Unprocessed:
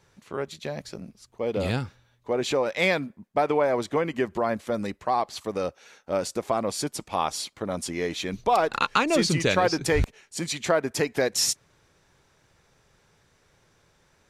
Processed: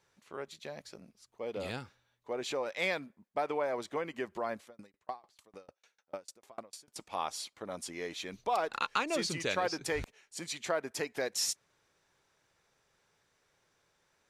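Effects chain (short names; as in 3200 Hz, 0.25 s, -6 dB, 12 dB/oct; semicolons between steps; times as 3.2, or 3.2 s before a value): low shelf 240 Hz -11 dB; 4.64–6.96 dB-ramp tremolo decaying 6.7 Hz, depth 35 dB; gain -8.5 dB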